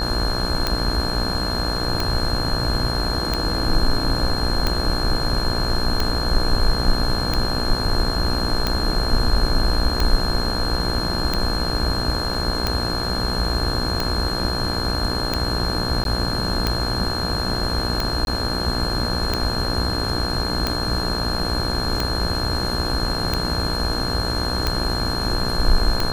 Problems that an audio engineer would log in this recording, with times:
buzz 60 Hz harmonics 29 -27 dBFS
tick 45 rpm -6 dBFS
whine 4.2 kHz -26 dBFS
12.34 s: dropout 2.9 ms
16.04–16.05 s: dropout 12 ms
18.25–18.27 s: dropout 21 ms

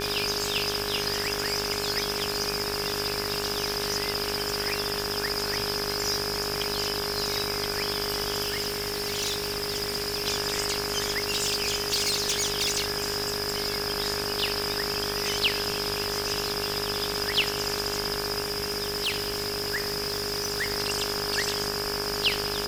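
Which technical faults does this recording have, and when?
buzz 50 Hz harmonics 35 -35 dBFS
crackle 130 per s -33 dBFS
whine 410 Hz -33 dBFS
8.42–10.27 s: clipped -24 dBFS
11.09–13.82 s: clipped -21 dBFS
18.43–20.72 s: clipped -23.5 dBFS

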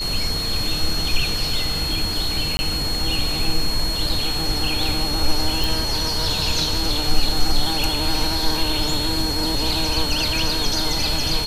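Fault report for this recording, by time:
whine 4.3 kHz -24 dBFS
2.57–2.59 s: dropout 20 ms
5.64 s: pop

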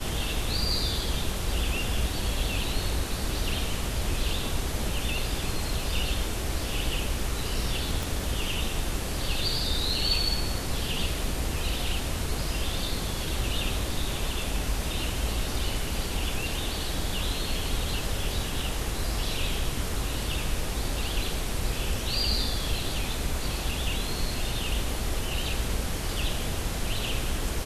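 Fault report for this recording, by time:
8.03 s: pop

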